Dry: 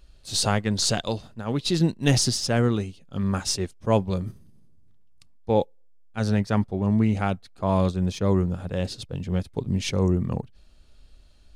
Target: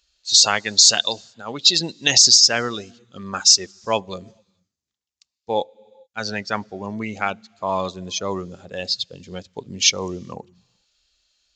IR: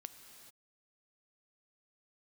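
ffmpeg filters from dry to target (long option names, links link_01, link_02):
-filter_complex "[0:a]asplit=2[link_01][link_02];[1:a]atrim=start_sample=2205[link_03];[link_02][link_03]afir=irnorm=-1:irlink=0,volume=-6dB[link_04];[link_01][link_04]amix=inputs=2:normalize=0,afftdn=noise_reduction=16:noise_floor=-32,aderivative,aresample=16000,aresample=44100,alimiter=level_in=21dB:limit=-1dB:release=50:level=0:latency=1,volume=-1dB"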